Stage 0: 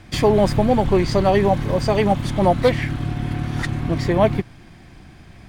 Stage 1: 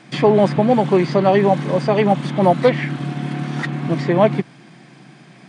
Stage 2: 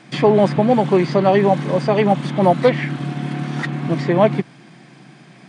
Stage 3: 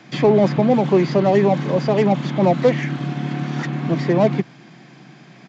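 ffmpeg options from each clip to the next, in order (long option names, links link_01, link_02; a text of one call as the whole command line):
ffmpeg -i in.wav -filter_complex "[0:a]afftfilt=real='re*between(b*sr/4096,120,10000)':imag='im*between(b*sr/4096,120,10000)':win_size=4096:overlap=0.75,acrossover=split=160|3800[link_01][link_02][link_03];[link_03]acompressor=threshold=-48dB:ratio=6[link_04];[link_01][link_02][link_04]amix=inputs=3:normalize=0,volume=2.5dB" out.wav
ffmpeg -i in.wav -af anull out.wav
ffmpeg -i in.wav -filter_complex "[0:a]acrossover=split=160|660[link_01][link_02][link_03];[link_03]asoftclip=type=tanh:threshold=-24dB[link_04];[link_01][link_02][link_04]amix=inputs=3:normalize=0,aresample=16000,aresample=44100" out.wav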